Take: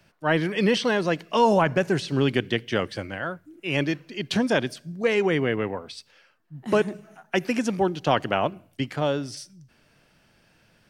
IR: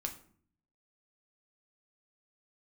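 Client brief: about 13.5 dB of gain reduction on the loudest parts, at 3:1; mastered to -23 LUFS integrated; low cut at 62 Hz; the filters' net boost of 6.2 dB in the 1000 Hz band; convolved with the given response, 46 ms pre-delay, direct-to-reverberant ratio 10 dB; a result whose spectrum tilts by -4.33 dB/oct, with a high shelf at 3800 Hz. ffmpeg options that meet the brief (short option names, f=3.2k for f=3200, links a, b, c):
-filter_complex "[0:a]highpass=62,equalizer=f=1k:t=o:g=8,highshelf=f=3.8k:g=-7,acompressor=threshold=-28dB:ratio=3,asplit=2[a][b];[1:a]atrim=start_sample=2205,adelay=46[c];[b][c]afir=irnorm=-1:irlink=0,volume=-10dB[d];[a][d]amix=inputs=2:normalize=0,volume=8dB"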